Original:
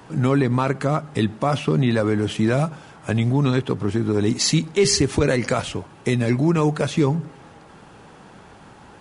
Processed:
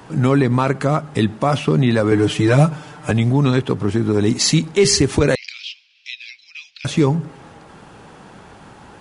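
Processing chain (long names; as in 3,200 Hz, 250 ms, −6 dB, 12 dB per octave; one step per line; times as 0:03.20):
0:02.11–0:03.11: comb filter 6.7 ms, depth 95%
0:05.35–0:06.85: elliptic band-pass filter 2,400–5,300 Hz, stop band 70 dB
level +3.5 dB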